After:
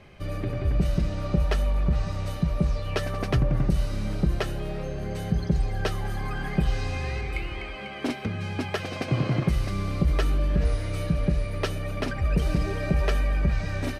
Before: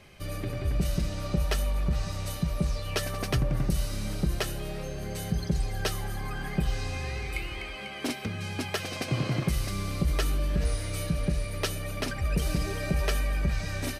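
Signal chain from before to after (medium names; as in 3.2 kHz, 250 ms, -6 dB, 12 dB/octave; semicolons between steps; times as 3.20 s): low-pass 1.9 kHz 6 dB/octave, from 6.05 s 3.4 kHz, from 7.21 s 2 kHz; trim +4 dB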